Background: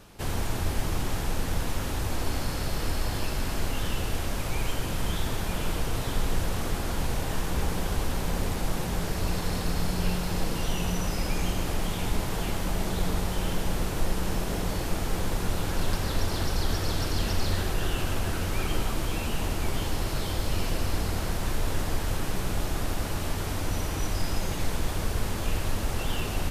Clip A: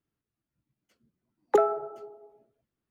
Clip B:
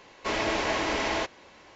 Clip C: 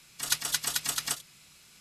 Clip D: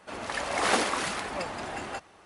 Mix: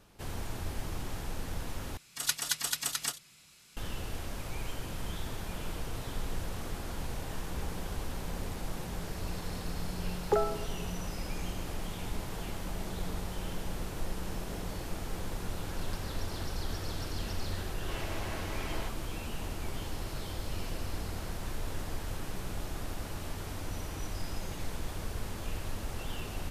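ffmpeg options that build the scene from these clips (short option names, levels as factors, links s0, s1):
-filter_complex "[0:a]volume=0.355,asplit=2[s0][s1];[s0]atrim=end=1.974[s2];[3:a]atrim=end=1.8,asetpts=PTS-STARTPTS,volume=0.75[s3];[s1]atrim=start=3.766[s4];[1:a]atrim=end=2.9,asetpts=PTS-STARTPTS,volume=0.501,afade=t=in:d=0.004:c=hsin,afade=t=out:st=2.896:d=0.004:c=hsin,adelay=8780[s5];[2:a]atrim=end=1.75,asetpts=PTS-STARTPTS,volume=0.178,afade=t=in:d=0.004:c=hsin,afade=t=out:st=1.746:d=0.004:c=hsin,adelay=17630[s6];[s2][s3]acrossfade=d=0.004:c1=hsin:c2=hsin[s7];[s7][s4]acrossfade=d=0.004:c1=hsin:c2=hsin[s8];[s8][s5][s6]amix=inputs=3:normalize=0"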